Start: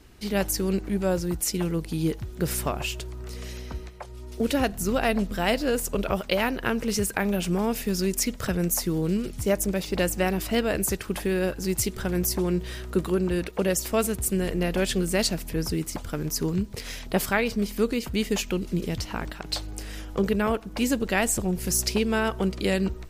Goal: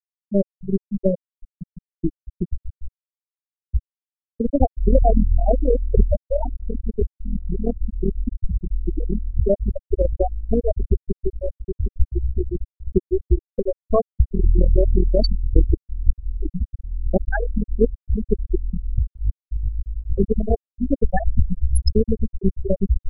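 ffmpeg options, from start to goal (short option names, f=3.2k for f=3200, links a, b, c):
-filter_complex "[0:a]asubboost=boost=8:cutoff=53,aeval=exprs='0.422*(cos(1*acos(clip(val(0)/0.422,-1,1)))-cos(1*PI/2))+0.0376*(cos(4*acos(clip(val(0)/0.422,-1,1)))-cos(4*PI/2))+0.0596*(cos(5*acos(clip(val(0)/0.422,-1,1)))-cos(5*PI/2))+0.0841*(cos(7*acos(clip(val(0)/0.422,-1,1)))-cos(7*PI/2))+0.0188*(cos(8*acos(clip(val(0)/0.422,-1,1)))-cos(8*PI/2))':c=same,asplit=2[a][b];[b]acompressor=threshold=-30dB:ratio=12,volume=-2dB[c];[a][c]amix=inputs=2:normalize=0,afftfilt=real='re*gte(hypot(re,im),0.501)':imag='im*gte(hypot(re,im),0.501)':win_size=1024:overlap=0.75,volume=7dB"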